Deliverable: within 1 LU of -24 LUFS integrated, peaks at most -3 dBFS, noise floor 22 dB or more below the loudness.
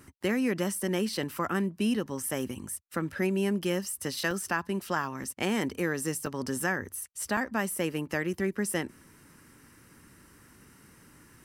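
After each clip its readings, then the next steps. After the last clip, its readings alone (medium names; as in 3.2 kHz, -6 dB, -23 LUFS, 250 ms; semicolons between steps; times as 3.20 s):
dropouts 6; longest dropout 3.0 ms; loudness -31.0 LUFS; peak level -14.0 dBFS; loudness target -24.0 LUFS
-> interpolate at 1.23/2.29/4.31/5.24/6.26/7.37 s, 3 ms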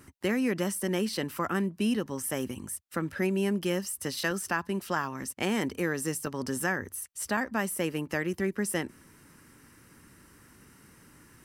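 dropouts 0; loudness -31.0 LUFS; peak level -14.0 dBFS; loudness target -24.0 LUFS
-> trim +7 dB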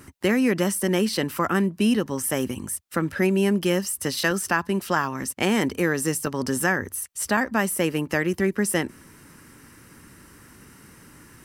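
loudness -24.0 LUFS; peak level -7.0 dBFS; noise floor -51 dBFS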